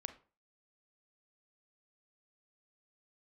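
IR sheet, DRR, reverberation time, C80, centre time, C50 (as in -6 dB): 9.5 dB, 0.40 s, 18.5 dB, 6 ms, 13.5 dB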